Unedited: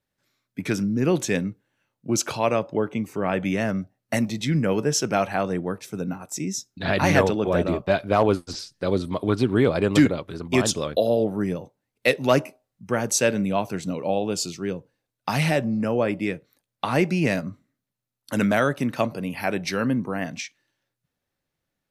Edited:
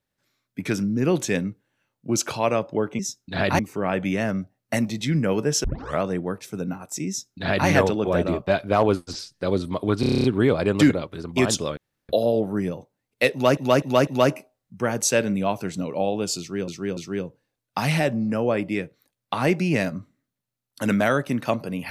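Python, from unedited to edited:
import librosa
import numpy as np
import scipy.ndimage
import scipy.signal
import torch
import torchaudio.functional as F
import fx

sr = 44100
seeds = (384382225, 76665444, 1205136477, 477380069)

y = fx.edit(x, sr, fx.tape_start(start_s=5.04, length_s=0.38),
    fx.duplicate(start_s=6.48, length_s=0.6, to_s=2.99),
    fx.stutter(start_s=9.4, slice_s=0.03, count=9),
    fx.insert_room_tone(at_s=10.93, length_s=0.32),
    fx.repeat(start_s=12.16, length_s=0.25, count=4),
    fx.repeat(start_s=14.48, length_s=0.29, count=3), tone=tone)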